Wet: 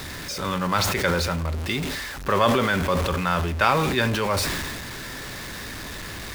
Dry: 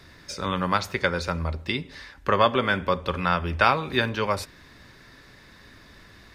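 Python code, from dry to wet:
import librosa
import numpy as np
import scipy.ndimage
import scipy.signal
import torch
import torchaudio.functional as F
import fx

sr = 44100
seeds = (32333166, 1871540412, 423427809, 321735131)

y = x + 0.5 * 10.0 ** (-28.0 / 20.0) * np.sign(x)
y = fx.sustainer(y, sr, db_per_s=26.0)
y = y * librosa.db_to_amplitude(-2.0)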